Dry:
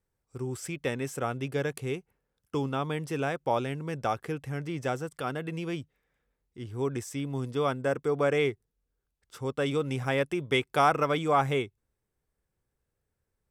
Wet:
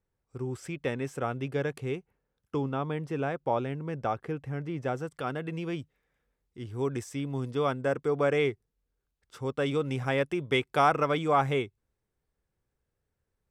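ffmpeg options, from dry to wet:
-af "asetnsamples=n=441:p=0,asendcmd='2.56 lowpass f 1600;4.97 lowpass f 3800;5.79 lowpass f 9200;7.04 lowpass f 5500',lowpass=f=3k:p=1"

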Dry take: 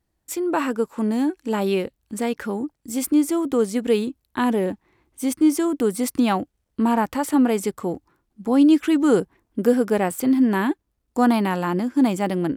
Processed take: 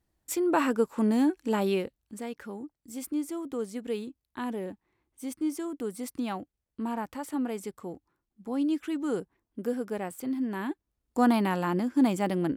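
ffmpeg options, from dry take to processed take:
-af "volume=5.5dB,afade=t=out:st=1.36:d=0.86:silence=0.298538,afade=t=in:st=10.56:d=0.67:silence=0.398107"

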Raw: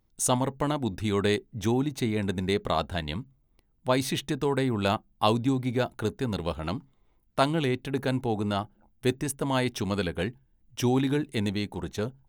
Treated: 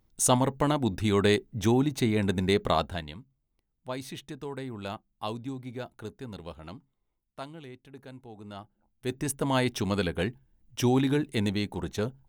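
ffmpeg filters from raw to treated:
-af "volume=21dB,afade=t=out:st=2.71:d=0.43:silence=0.223872,afade=t=out:st=6.52:d=1.08:silence=0.421697,afade=t=in:st=8.34:d=0.72:silence=0.298538,afade=t=in:st=9.06:d=0.23:silence=0.375837"

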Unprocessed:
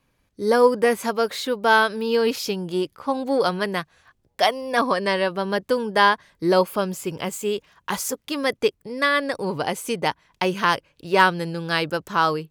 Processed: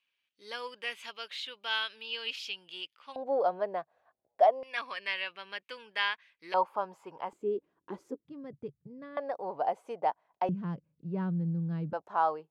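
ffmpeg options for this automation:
-af "asetnsamples=n=441:p=0,asendcmd='3.16 bandpass f 660;4.63 bandpass f 2500;6.54 bandpass f 890;7.33 bandpass f 330;8.25 bandpass f 140;9.17 bandpass f 720;10.49 bandpass f 170;11.93 bandpass f 760',bandpass=f=2.9k:t=q:w=4.1:csg=0"

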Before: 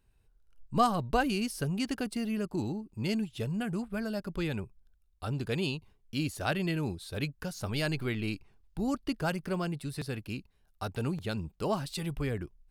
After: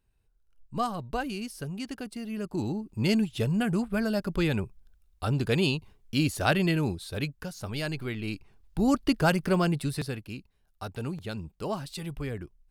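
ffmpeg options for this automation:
-af "volume=15.5dB,afade=t=in:st=2.26:d=0.77:silence=0.298538,afade=t=out:st=6.58:d=0.95:silence=0.421697,afade=t=in:st=8.22:d=0.73:silence=0.354813,afade=t=out:st=9.82:d=0.4:silence=0.334965"

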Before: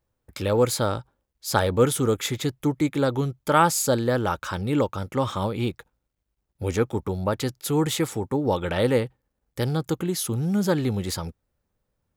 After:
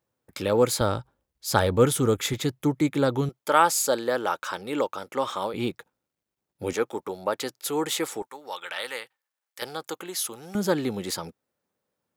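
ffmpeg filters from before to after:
-af "asetnsamples=n=441:p=0,asendcmd='0.81 highpass f 52;2.33 highpass f 110;3.29 highpass f 400;5.54 highpass f 180;6.73 highpass f 400;8.22 highpass f 1300;9.62 highpass f 610;10.55 highpass f 230',highpass=150"

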